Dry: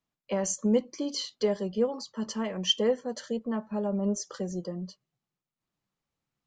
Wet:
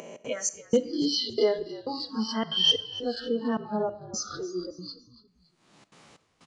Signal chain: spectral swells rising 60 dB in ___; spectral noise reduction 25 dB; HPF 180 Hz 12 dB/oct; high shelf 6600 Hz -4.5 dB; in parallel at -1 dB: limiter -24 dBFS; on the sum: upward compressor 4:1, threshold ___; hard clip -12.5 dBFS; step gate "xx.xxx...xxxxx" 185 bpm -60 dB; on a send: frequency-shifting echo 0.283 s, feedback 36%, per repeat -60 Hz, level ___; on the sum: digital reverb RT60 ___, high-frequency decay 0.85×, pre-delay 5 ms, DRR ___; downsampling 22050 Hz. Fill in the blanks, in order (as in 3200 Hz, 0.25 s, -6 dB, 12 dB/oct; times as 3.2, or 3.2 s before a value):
0.63 s, -33 dBFS, -17 dB, 0.63 s, 14.5 dB